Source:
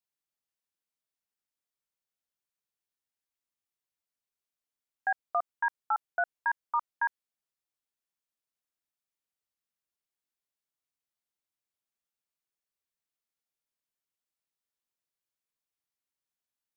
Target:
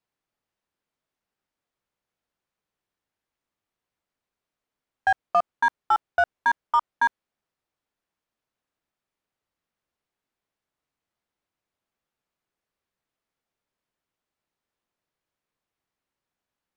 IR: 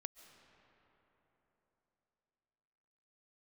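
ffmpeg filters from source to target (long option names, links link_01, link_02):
-filter_complex "[0:a]lowpass=frequency=1400:poles=1,asplit=2[link_01][link_02];[link_02]asoftclip=type=tanh:threshold=-35.5dB,volume=-3dB[link_03];[link_01][link_03]amix=inputs=2:normalize=0,volume=8.5dB"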